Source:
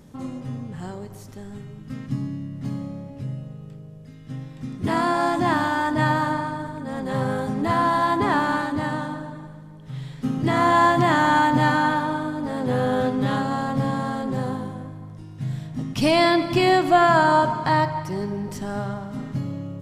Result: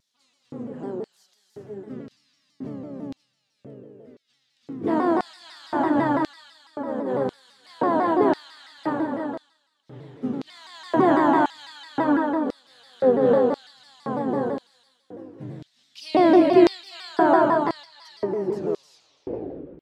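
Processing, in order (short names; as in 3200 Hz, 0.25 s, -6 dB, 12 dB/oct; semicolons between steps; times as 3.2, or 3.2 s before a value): tape stop at the end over 1.41 s; tilt -4 dB/oct; non-linear reverb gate 0.42 s rising, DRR 2 dB; LFO high-pass square 0.96 Hz 390–4200 Hz; shaped vibrato saw down 6 Hz, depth 160 cents; gain -5.5 dB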